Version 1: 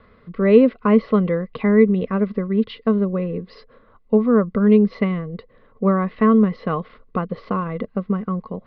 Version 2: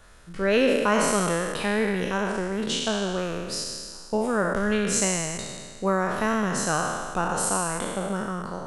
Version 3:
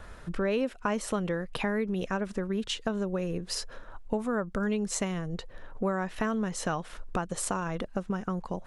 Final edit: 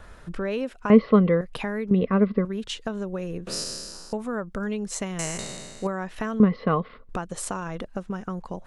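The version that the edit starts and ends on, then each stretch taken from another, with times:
3
0:00.90–0:01.41: punch in from 1
0:01.91–0:02.45: punch in from 1
0:03.47–0:04.13: punch in from 2
0:05.19–0:05.87: punch in from 2
0:06.40–0:07.09: punch in from 1

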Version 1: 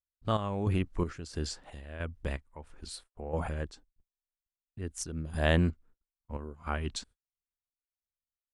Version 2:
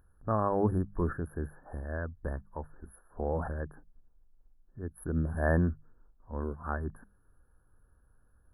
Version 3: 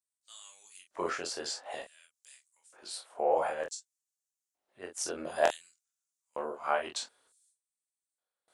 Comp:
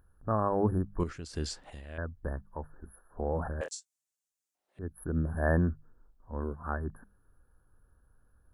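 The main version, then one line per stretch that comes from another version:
2
0:01.00–0:01.98: punch in from 1
0:03.61–0:04.79: punch in from 3

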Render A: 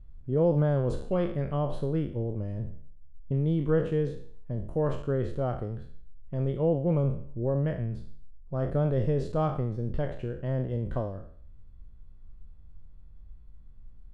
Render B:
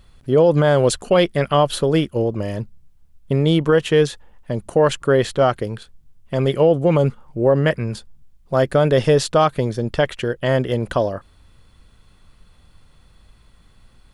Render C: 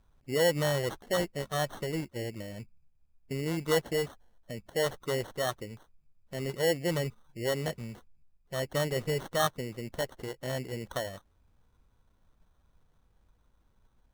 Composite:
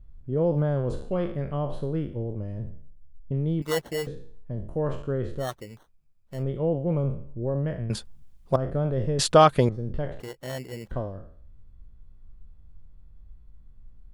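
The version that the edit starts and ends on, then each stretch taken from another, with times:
A
0:03.62–0:04.07: punch in from C
0:05.45–0:06.36: punch in from C, crossfade 0.16 s
0:07.90–0:08.56: punch in from B
0:09.19–0:09.69: punch in from B
0:10.20–0:10.91: punch in from C

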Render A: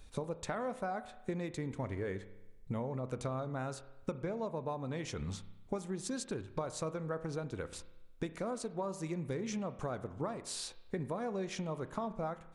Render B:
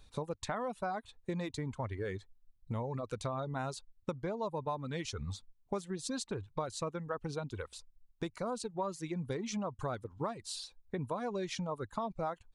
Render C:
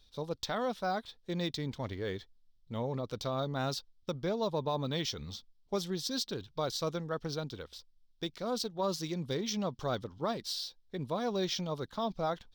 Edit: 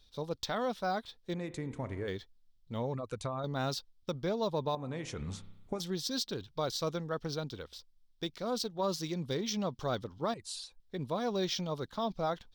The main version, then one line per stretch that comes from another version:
C
0:01.34–0:02.08: punch in from A
0:02.94–0:03.44: punch in from B
0:04.75–0:05.80: punch in from A
0:10.34–0:10.80: punch in from B

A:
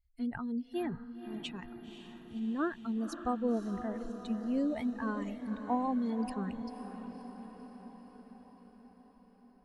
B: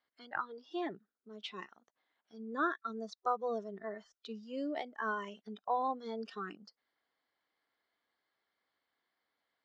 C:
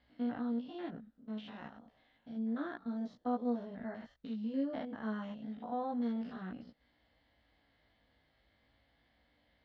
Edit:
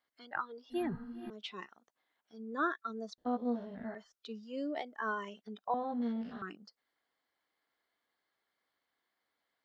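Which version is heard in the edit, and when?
B
0:00.70–0:01.30: punch in from A
0:03.18–0:03.95: punch in from C
0:05.74–0:06.42: punch in from C

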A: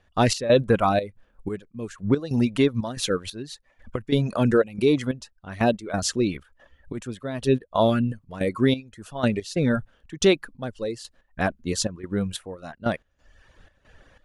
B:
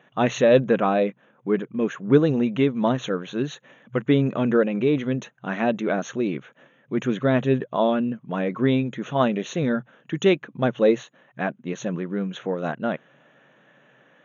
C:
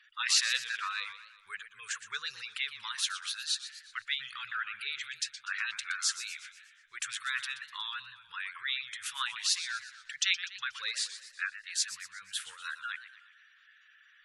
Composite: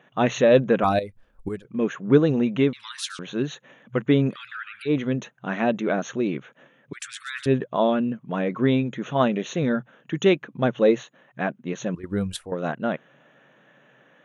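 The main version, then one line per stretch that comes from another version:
B
0:00.84–0:01.65: punch in from A
0:02.73–0:03.19: punch in from C
0:04.33–0:04.88: punch in from C, crossfade 0.06 s
0:06.93–0:07.46: punch in from C
0:11.95–0:12.52: punch in from A

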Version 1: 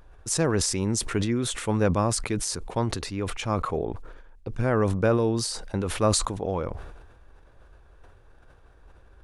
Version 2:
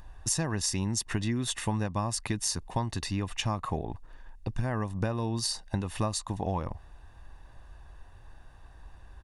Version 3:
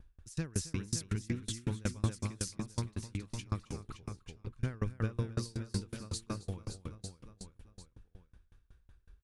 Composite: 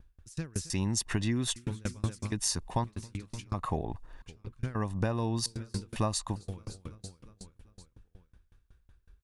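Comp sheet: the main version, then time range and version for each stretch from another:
3
0:00.70–0:01.56: punch in from 2
0:02.32–0:02.84: punch in from 2
0:03.54–0:04.22: punch in from 2
0:04.75–0:05.46: punch in from 2
0:05.96–0:06.36: punch in from 2
not used: 1

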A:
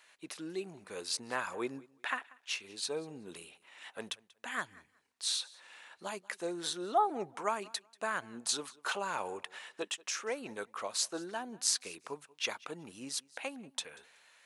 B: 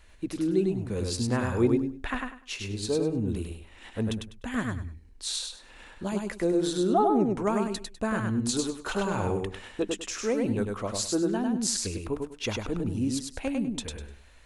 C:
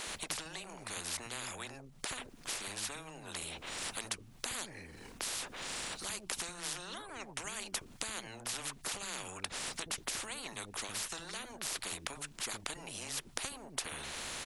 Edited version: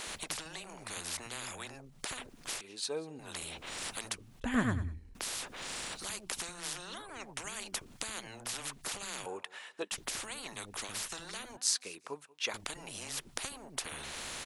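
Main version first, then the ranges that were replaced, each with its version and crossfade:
C
0:02.61–0:03.19: punch in from A
0:04.40–0:05.15: punch in from B
0:09.26–0:09.92: punch in from A
0:11.57–0:12.54: punch in from A

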